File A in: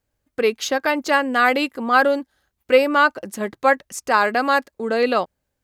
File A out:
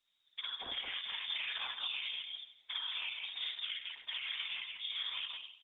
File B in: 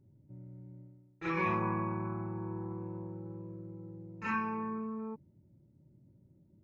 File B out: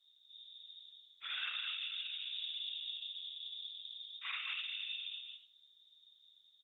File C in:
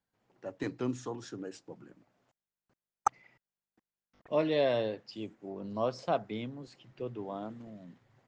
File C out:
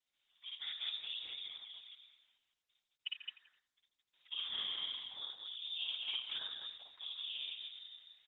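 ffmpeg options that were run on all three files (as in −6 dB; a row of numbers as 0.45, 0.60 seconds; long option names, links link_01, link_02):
-filter_complex "[0:a]alimiter=limit=-14dB:level=0:latency=1:release=108,asplit=2[link_01][link_02];[link_02]aecho=0:1:85|170|255:0.282|0.062|0.0136[link_03];[link_01][link_03]amix=inputs=2:normalize=0,acompressor=threshold=-33dB:ratio=8,afftfilt=real='hypot(re,im)*cos(2*PI*random(0))':imag='hypot(re,im)*sin(2*PI*random(1))':win_size=512:overlap=0.75,lowpass=frequency=3200:width_type=q:width=0.5098,lowpass=frequency=3200:width_type=q:width=0.6013,lowpass=frequency=3200:width_type=q:width=0.9,lowpass=frequency=3200:width_type=q:width=2.563,afreqshift=-3800,asplit=2[link_04][link_05];[link_05]aecho=0:1:55.39|215.7:1|0.708[link_06];[link_04][link_06]amix=inputs=2:normalize=0,volume=-1.5dB" -ar 48000 -c:a libopus -b:a 10k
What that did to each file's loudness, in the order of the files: −19.0, −3.5, −6.5 LU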